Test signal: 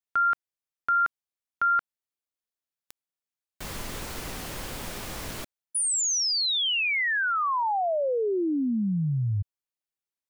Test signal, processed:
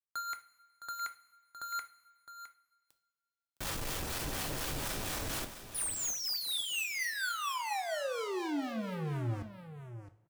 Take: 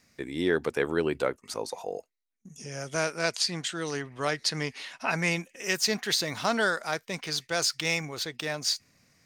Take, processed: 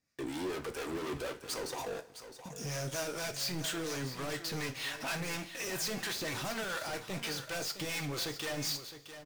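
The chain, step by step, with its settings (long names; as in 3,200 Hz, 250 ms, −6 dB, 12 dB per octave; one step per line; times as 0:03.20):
notch filter 2,100 Hz, Q 19
leveller curve on the samples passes 5
soft clipping −27 dBFS
two-band tremolo in antiphase 4.2 Hz, depth 50%, crossover 630 Hz
single-tap delay 662 ms −11.5 dB
coupled-rooms reverb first 0.34 s, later 1.9 s, from −18 dB, DRR 7.5 dB
level −7 dB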